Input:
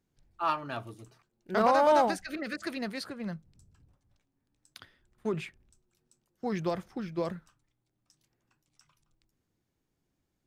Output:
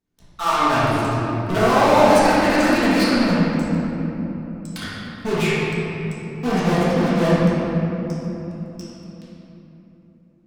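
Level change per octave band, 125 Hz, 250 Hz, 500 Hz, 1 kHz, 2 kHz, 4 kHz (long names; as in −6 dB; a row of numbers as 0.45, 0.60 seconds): +21.5, +18.0, +12.0, +11.0, +16.0, +16.5 decibels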